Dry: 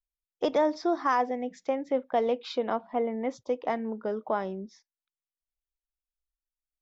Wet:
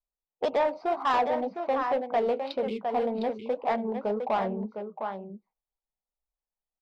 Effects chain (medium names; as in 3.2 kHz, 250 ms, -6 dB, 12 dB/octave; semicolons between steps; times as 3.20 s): local Wiener filter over 25 samples; spectral selection erased 2.63–2.85 s, 470–2100 Hz; in parallel at +2.5 dB: peak limiter -27 dBFS, peak gain reduction 12 dB; on the sum: graphic EQ with 31 bands 200 Hz +5 dB, 315 Hz -11 dB, 800 Hz +4 dB, 6.3 kHz -9 dB; on a send: delay 708 ms -8.5 dB; on the sum: overdrive pedal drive 12 dB, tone 4.7 kHz, clips at -7.5 dBFS; level-controlled noise filter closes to 1.1 kHz, open at -20.5 dBFS; flange 1.9 Hz, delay 1.7 ms, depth 8.9 ms, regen -59%; saturation -17.5 dBFS, distortion -18 dB